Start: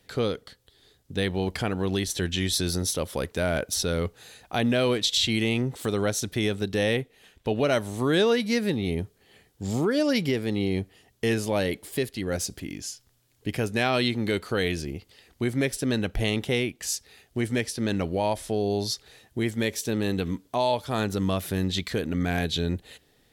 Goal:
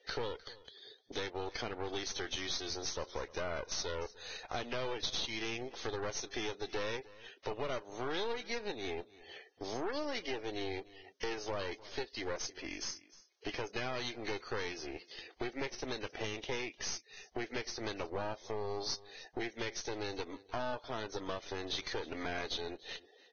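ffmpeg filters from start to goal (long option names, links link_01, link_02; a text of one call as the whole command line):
ffmpeg -i in.wav -filter_complex "[0:a]highpass=frequency=360:width=0.5412,highpass=frequency=360:width=1.3066,aeval=exprs='clip(val(0),-1,0.02)':channel_layout=same,acompressor=threshold=-47dB:ratio=4,afftdn=noise_reduction=15:noise_floor=-62,aeval=exprs='0.0355*(cos(1*acos(clip(val(0)/0.0355,-1,1)))-cos(1*PI/2))+0.00355*(cos(8*acos(clip(val(0)/0.0355,-1,1)))-cos(8*PI/2))':channel_layout=same,asplit=2[link_01][link_02];[link_02]aecho=0:1:303:0.1[link_03];[link_01][link_03]amix=inputs=2:normalize=0,volume=6dB" -ar 16000 -c:a libvorbis -b:a 16k out.ogg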